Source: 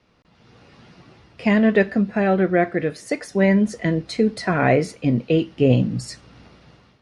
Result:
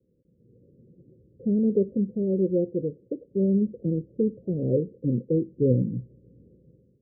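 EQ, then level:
Chebyshev low-pass with heavy ripple 540 Hz, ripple 3 dB
low-shelf EQ 70 Hz −7.5 dB
−3.0 dB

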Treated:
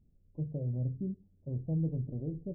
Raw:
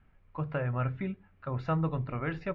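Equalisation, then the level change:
Gaussian smoothing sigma 22 samples
low-shelf EQ 120 Hz −7 dB
+2.5 dB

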